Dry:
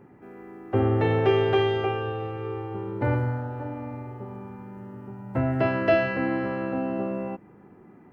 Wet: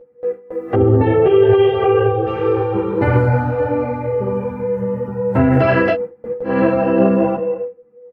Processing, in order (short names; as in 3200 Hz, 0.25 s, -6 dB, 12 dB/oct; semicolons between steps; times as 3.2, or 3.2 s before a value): 0.74–2.27 spectral contrast raised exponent 1.5; feedback echo 0.206 s, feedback 28%, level -10.5 dB; spectral noise reduction 8 dB; 5.88–6.51 room tone, crossfade 0.16 s; whine 490 Hz -33 dBFS; gate with hold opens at -31 dBFS; maximiser +18.5 dB; ensemble effect; gain -1 dB